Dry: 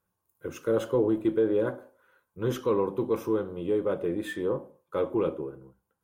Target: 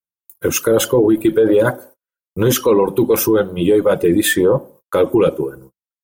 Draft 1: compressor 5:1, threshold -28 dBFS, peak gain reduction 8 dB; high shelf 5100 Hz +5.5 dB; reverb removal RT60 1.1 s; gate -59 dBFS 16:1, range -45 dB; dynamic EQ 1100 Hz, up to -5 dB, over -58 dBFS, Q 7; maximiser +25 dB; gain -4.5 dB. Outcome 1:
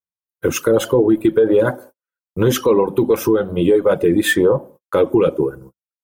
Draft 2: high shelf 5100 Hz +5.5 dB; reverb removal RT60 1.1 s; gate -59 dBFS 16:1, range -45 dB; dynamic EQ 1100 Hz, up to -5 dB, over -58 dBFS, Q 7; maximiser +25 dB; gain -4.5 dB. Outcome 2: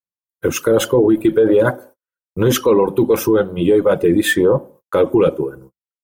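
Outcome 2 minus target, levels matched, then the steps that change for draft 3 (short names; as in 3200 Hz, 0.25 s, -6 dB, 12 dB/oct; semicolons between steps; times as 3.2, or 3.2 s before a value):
8000 Hz band -4.5 dB
change: high shelf 5100 Hz +14.5 dB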